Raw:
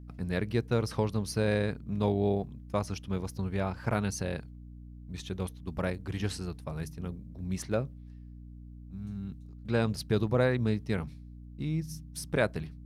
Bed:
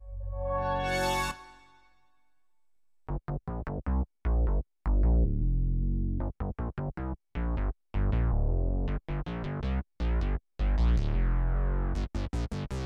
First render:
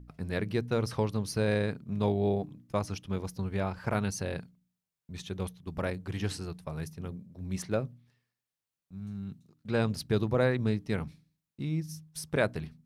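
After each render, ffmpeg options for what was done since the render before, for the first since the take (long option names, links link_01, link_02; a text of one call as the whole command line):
ffmpeg -i in.wav -af "bandreject=frequency=60:width_type=h:width=4,bandreject=frequency=120:width_type=h:width=4,bandreject=frequency=180:width_type=h:width=4,bandreject=frequency=240:width_type=h:width=4,bandreject=frequency=300:width_type=h:width=4" out.wav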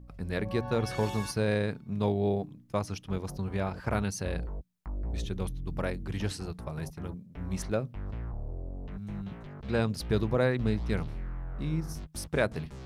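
ffmpeg -i in.wav -i bed.wav -filter_complex "[1:a]volume=-10dB[link_01];[0:a][link_01]amix=inputs=2:normalize=0" out.wav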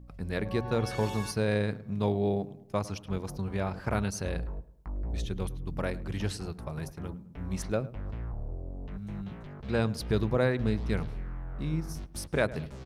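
ffmpeg -i in.wav -filter_complex "[0:a]asplit=2[link_01][link_02];[link_02]adelay=105,lowpass=frequency=1600:poles=1,volume=-17dB,asplit=2[link_03][link_04];[link_04]adelay=105,lowpass=frequency=1600:poles=1,volume=0.47,asplit=2[link_05][link_06];[link_06]adelay=105,lowpass=frequency=1600:poles=1,volume=0.47,asplit=2[link_07][link_08];[link_08]adelay=105,lowpass=frequency=1600:poles=1,volume=0.47[link_09];[link_01][link_03][link_05][link_07][link_09]amix=inputs=5:normalize=0" out.wav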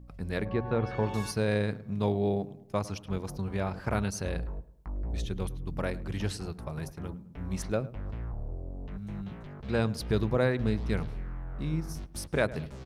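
ffmpeg -i in.wav -filter_complex "[0:a]asettb=1/sr,asplit=3[link_01][link_02][link_03];[link_01]atrim=end=0.454[link_04];[link_02]atrim=start=0.45:end=1.14,asetpts=PTS-STARTPTS,afade=type=in:duration=0.004:curve=qsin,afade=type=out:start_time=0.686:duration=0.004:curve=qsin,lowpass=2300[link_05];[link_03]atrim=start=1.136[link_06];[link_04][link_05]acrossfade=duration=0.004:curve1=hsin:curve2=qsin[link_07];[link_07][link_06]acrossfade=duration=0.004:curve1=qsin:curve2=hsin" out.wav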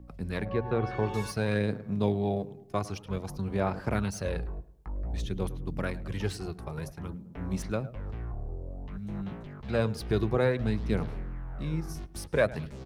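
ffmpeg -i in.wav -filter_complex "[0:a]acrossover=split=200|2900[link_01][link_02][link_03];[link_02]aphaser=in_gain=1:out_gain=1:delay=2.8:decay=0.45:speed=0.54:type=sinusoidal[link_04];[link_03]asoftclip=type=tanh:threshold=-36.5dB[link_05];[link_01][link_04][link_05]amix=inputs=3:normalize=0" out.wav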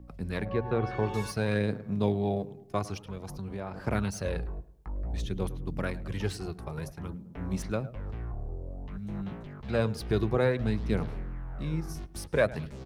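ffmpeg -i in.wav -filter_complex "[0:a]asettb=1/sr,asplit=3[link_01][link_02][link_03];[link_01]atrim=end=3.014[link_04];[link_02]atrim=start=3.01:end=3.84,asetpts=PTS-STARTPTS,afade=type=in:duration=0.004:curve=qsin,afade=type=out:start_time=0.826:duration=0.004:curve=qsin,acompressor=threshold=-36dB:ratio=2.5:attack=3.2:release=140:knee=1:detection=peak[link_05];[link_03]atrim=start=3.836[link_06];[link_04][link_05]acrossfade=duration=0.004:curve1=hsin:curve2=qsin[link_07];[link_07][link_06]acrossfade=duration=0.004:curve1=qsin:curve2=hsin" out.wav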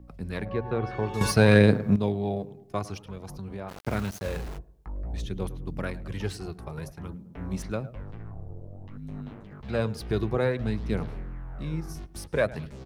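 ffmpeg -i in.wav -filter_complex "[0:a]asplit=3[link_01][link_02][link_03];[link_01]afade=type=out:start_time=3.68:duration=0.02[link_04];[link_02]aeval=exprs='val(0)*gte(abs(val(0)),0.0158)':channel_layout=same,afade=type=in:start_time=3.68:duration=0.02,afade=type=out:start_time=4.57:duration=0.02[link_05];[link_03]afade=type=in:start_time=4.57:duration=0.02[link_06];[link_04][link_05][link_06]amix=inputs=3:normalize=0,asettb=1/sr,asplit=3[link_07][link_08][link_09];[link_07]atrim=end=8.034[link_10];[link_08]atrim=start=8.03:end=9.52,asetpts=PTS-STARTPTS,afade=type=in:duration=0.004:curve=qsin,afade=type=out:start_time=1.486:duration=0.004:curve=qsin,aeval=exprs='val(0)*sin(2*PI*51*n/s)':channel_layout=same[link_11];[link_09]atrim=start=9.516[link_12];[link_10][link_11]acrossfade=duration=0.004:curve1=hsin:curve2=qsin[link_13];[link_13][link_12]acrossfade=duration=0.004:curve1=qsin:curve2=hsin,asplit=3[link_14][link_15][link_16];[link_14]atrim=end=1.212[link_17];[link_15]atrim=start=1.208:end=1.962,asetpts=PTS-STARTPTS,volume=11dB[link_18];[link_16]atrim=start=1.958[link_19];[link_17][link_18]acrossfade=duration=0.004:curve1=hsin:curve2=hsin[link_20];[link_20][link_19]acrossfade=duration=0.004:curve1=hsin:curve2=hsin" out.wav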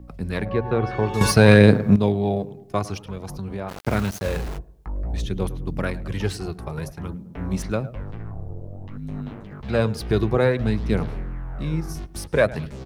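ffmpeg -i in.wav -af "volume=6.5dB,alimiter=limit=-1dB:level=0:latency=1" out.wav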